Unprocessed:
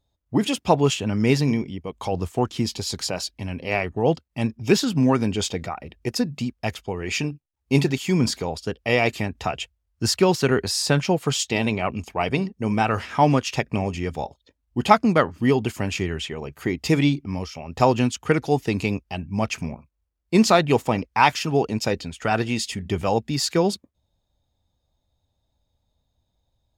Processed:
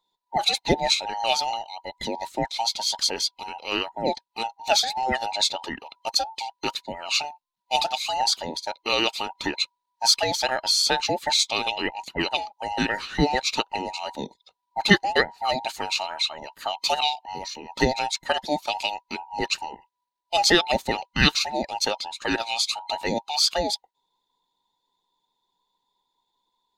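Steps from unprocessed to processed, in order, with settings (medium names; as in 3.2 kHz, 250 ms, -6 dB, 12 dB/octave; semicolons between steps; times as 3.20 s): every band turned upside down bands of 1 kHz; fifteen-band graphic EQ 100 Hz -11 dB, 630 Hz -5 dB, 4 kHz +11 dB; harmonic-percussive split harmonic -5 dB; trim -1 dB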